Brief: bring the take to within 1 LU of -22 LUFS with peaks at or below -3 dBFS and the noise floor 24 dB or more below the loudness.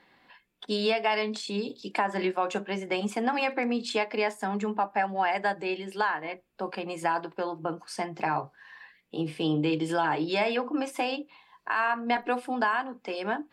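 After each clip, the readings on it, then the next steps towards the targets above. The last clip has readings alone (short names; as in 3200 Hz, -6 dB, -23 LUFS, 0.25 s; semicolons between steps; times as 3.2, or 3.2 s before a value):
loudness -29.5 LUFS; peak -15.5 dBFS; loudness target -22.0 LUFS
-> gain +7.5 dB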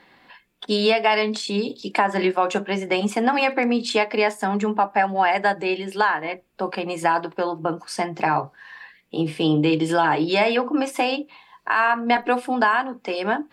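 loudness -22.0 LUFS; peak -8.0 dBFS; noise floor -58 dBFS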